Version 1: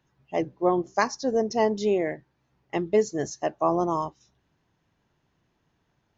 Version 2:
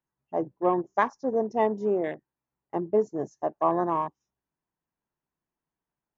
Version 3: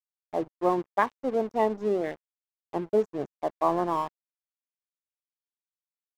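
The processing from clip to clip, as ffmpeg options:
-af "equalizer=f=100:t=o:w=0.67:g=-10,equalizer=f=1000:t=o:w=0.67:g=4,equalizer=f=4000:t=o:w=0.67:g=-11,afwtdn=0.0158,volume=0.794"
-af "aeval=exprs='sgn(val(0))*max(abs(val(0))-0.0075,0)':c=same"

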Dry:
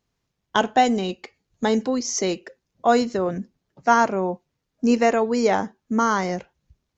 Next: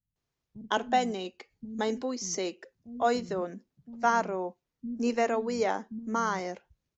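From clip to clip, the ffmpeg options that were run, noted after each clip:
-filter_complex "[0:a]acrossover=split=200[s0][s1];[s1]adelay=160[s2];[s0][s2]amix=inputs=2:normalize=0,volume=0.398"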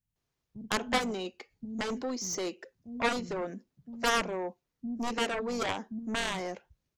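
-af "aeval=exprs='0.266*(cos(1*acos(clip(val(0)/0.266,-1,1)))-cos(1*PI/2))+0.106*(cos(7*acos(clip(val(0)/0.266,-1,1)))-cos(7*PI/2))':c=same,volume=0.631"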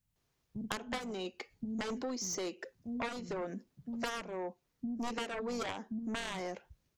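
-af "acompressor=threshold=0.00891:ratio=5,volume=1.68"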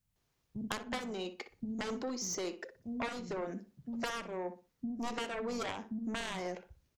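-filter_complex "[0:a]asplit=2[s0][s1];[s1]adelay=61,lowpass=f=2400:p=1,volume=0.282,asplit=2[s2][s3];[s3]adelay=61,lowpass=f=2400:p=1,volume=0.27,asplit=2[s4][s5];[s5]adelay=61,lowpass=f=2400:p=1,volume=0.27[s6];[s0][s2][s4][s6]amix=inputs=4:normalize=0"

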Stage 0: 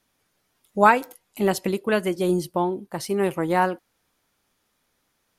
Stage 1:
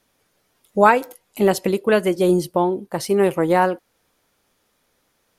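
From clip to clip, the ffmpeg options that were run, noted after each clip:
-filter_complex "[0:a]equalizer=f=500:w=1.8:g=4.5,asplit=2[s0][s1];[s1]alimiter=limit=0.237:level=0:latency=1:release=406,volume=0.794[s2];[s0][s2]amix=inputs=2:normalize=0,volume=0.891"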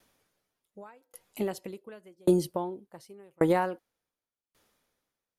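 -af "acompressor=threshold=0.158:ratio=6,aeval=exprs='val(0)*pow(10,-38*if(lt(mod(0.88*n/s,1),2*abs(0.88)/1000),1-mod(0.88*n/s,1)/(2*abs(0.88)/1000),(mod(0.88*n/s,1)-2*abs(0.88)/1000)/(1-2*abs(0.88)/1000))/20)':c=same"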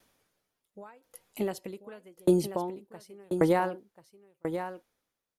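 -af "aecho=1:1:1037:0.355"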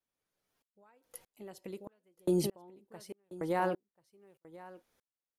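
-filter_complex "[0:a]asplit=2[s0][s1];[s1]alimiter=limit=0.112:level=0:latency=1:release=461,volume=1.12[s2];[s0][s2]amix=inputs=2:normalize=0,aeval=exprs='val(0)*pow(10,-35*if(lt(mod(-1.6*n/s,1),2*abs(-1.6)/1000),1-mod(-1.6*n/s,1)/(2*abs(-1.6)/1000),(mod(-1.6*n/s,1)-2*abs(-1.6)/1000)/(1-2*abs(-1.6)/1000))/20)':c=same"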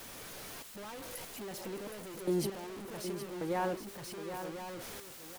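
-filter_complex "[0:a]aeval=exprs='val(0)+0.5*0.0168*sgn(val(0))':c=same,asplit=2[s0][s1];[s1]aecho=0:1:768:0.355[s2];[s0][s2]amix=inputs=2:normalize=0,volume=0.631"

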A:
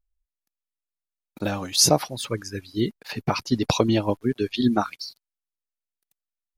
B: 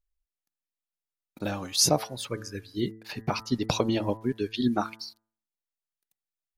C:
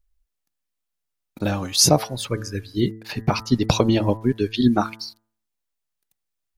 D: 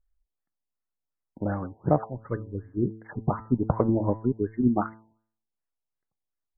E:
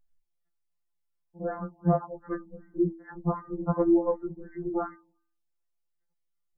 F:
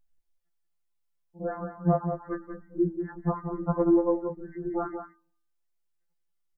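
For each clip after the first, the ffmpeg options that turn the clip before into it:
-af "bandreject=f=110.3:t=h:w=4,bandreject=f=220.6:t=h:w=4,bandreject=f=330.9:t=h:w=4,bandreject=f=441.2:t=h:w=4,bandreject=f=551.5:t=h:w=4,bandreject=f=661.8:t=h:w=4,bandreject=f=772.1:t=h:w=4,bandreject=f=882.4:t=h:w=4,bandreject=f=992.7:t=h:w=4,bandreject=f=1103:t=h:w=4,bandreject=f=1213.3:t=h:w=4,bandreject=f=1323.6:t=h:w=4,bandreject=f=1433.9:t=h:w=4,bandreject=f=1544.2:t=h:w=4,bandreject=f=1654.5:t=h:w=4,bandreject=f=1764.8:t=h:w=4,bandreject=f=1875.1:t=h:w=4,bandreject=f=1985.4:t=h:w=4,volume=0.596"
-af "lowshelf=f=140:g=8,volume=2"
-af "afftfilt=real='re*lt(b*sr/1024,950*pow(2200/950,0.5+0.5*sin(2*PI*2.7*pts/sr)))':imag='im*lt(b*sr/1024,950*pow(2200/950,0.5+0.5*sin(2*PI*2.7*pts/sr)))':win_size=1024:overlap=0.75,volume=0.562"
-af "afftfilt=real='re*2.83*eq(mod(b,8),0)':imag='im*2.83*eq(mod(b,8),0)':win_size=2048:overlap=0.75,volume=1.19"
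-af "aecho=1:1:183:0.398"

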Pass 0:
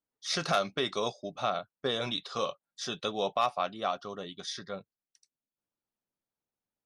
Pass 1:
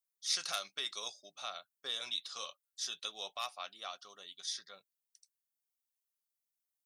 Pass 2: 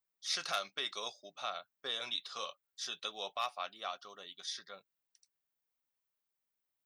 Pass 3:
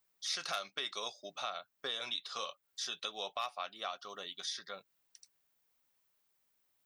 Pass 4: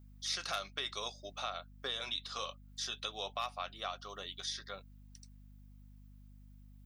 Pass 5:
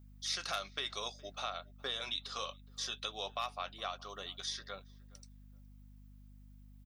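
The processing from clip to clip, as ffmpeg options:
-af "aderivative,volume=1.41"
-af "equalizer=f=9400:t=o:w=2.1:g=-12.5,volume=1.88"
-af "acompressor=threshold=0.002:ratio=2,volume=3.16"
-af "aeval=exprs='val(0)+0.00178*(sin(2*PI*50*n/s)+sin(2*PI*2*50*n/s)/2+sin(2*PI*3*50*n/s)/3+sin(2*PI*4*50*n/s)/4+sin(2*PI*5*50*n/s)/5)':c=same"
-filter_complex "[0:a]asplit=2[s0][s1];[s1]adelay=416,lowpass=f=1500:p=1,volume=0.0841,asplit=2[s2][s3];[s3]adelay=416,lowpass=f=1500:p=1,volume=0.25[s4];[s0][s2][s4]amix=inputs=3:normalize=0"

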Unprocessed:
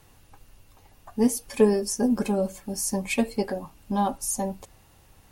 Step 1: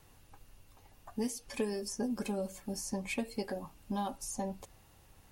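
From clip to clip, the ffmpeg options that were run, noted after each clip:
-filter_complex "[0:a]acrossover=split=1900|7500[s0][s1][s2];[s0]acompressor=threshold=0.0398:ratio=4[s3];[s1]acompressor=threshold=0.0158:ratio=4[s4];[s2]acompressor=threshold=0.00501:ratio=4[s5];[s3][s4][s5]amix=inputs=3:normalize=0,volume=0.562"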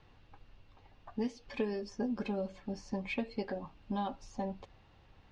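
-af "lowpass=f=4200:w=0.5412,lowpass=f=4200:w=1.3066"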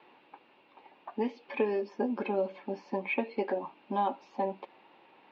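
-filter_complex "[0:a]highpass=f=230:w=0.5412,highpass=f=230:w=1.3066,equalizer=f=360:t=q:w=4:g=6,equalizer=f=570:t=q:w=4:g=3,equalizer=f=910:t=q:w=4:g=9,equalizer=f=2400:t=q:w=4:g=7,lowpass=f=3900:w=0.5412,lowpass=f=3900:w=1.3066,acrossover=split=2900[s0][s1];[s1]acompressor=threshold=0.00112:ratio=4:attack=1:release=60[s2];[s0][s2]amix=inputs=2:normalize=0,volume=1.5"

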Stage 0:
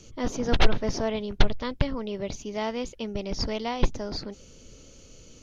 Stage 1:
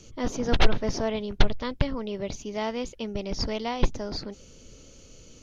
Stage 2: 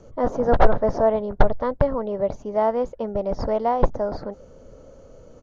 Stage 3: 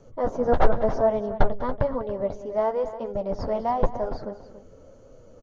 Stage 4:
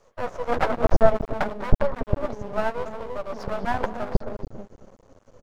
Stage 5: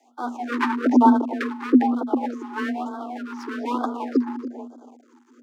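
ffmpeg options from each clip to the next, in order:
-af anull
-af "firequalizer=gain_entry='entry(360,0);entry(550,11);entry(1700,-1);entry(2500,-16)':delay=0.05:min_phase=1,volume=1.33"
-af "flanger=delay=7.1:depth=5.9:regen=-29:speed=0.98:shape=triangular,aecho=1:1:198|282:0.133|0.2"
-filter_complex "[0:a]acrossover=split=420[s0][s1];[s0]adelay=320[s2];[s2][s1]amix=inputs=2:normalize=0,aeval=exprs='max(val(0),0)':c=same,aeval=exprs='0.447*(cos(1*acos(clip(val(0)/0.447,-1,1)))-cos(1*PI/2))+0.1*(cos(2*acos(clip(val(0)/0.447,-1,1)))-cos(2*PI/2))':c=same,volume=1.41"
-af "afreqshift=240,afftfilt=real='re*(1-between(b*sr/1024,560*pow(2300/560,0.5+0.5*sin(2*PI*1.1*pts/sr))/1.41,560*pow(2300/560,0.5+0.5*sin(2*PI*1.1*pts/sr))*1.41))':imag='im*(1-between(b*sr/1024,560*pow(2300/560,0.5+0.5*sin(2*PI*1.1*pts/sr))/1.41,560*pow(2300/560,0.5+0.5*sin(2*PI*1.1*pts/sr))*1.41))':win_size=1024:overlap=0.75"

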